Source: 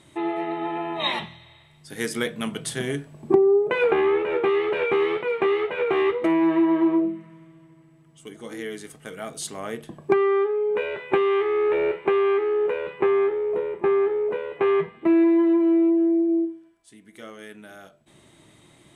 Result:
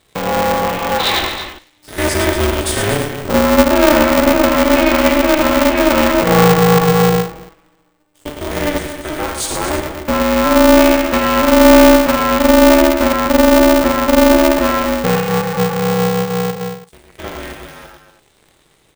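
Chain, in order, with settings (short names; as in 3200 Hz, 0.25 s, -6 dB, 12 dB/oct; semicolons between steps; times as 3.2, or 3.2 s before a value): stepped spectrum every 50 ms; comb 4.2 ms, depth 74%; in parallel at -2 dB: level quantiser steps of 19 dB; on the sum: sample leveller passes 3; on a send: tapped delay 52/107/129/238/331 ms -8/-5/-17/-9/-13.5 dB; on the sum: polarity switched at an audio rate 150 Hz; gain -3 dB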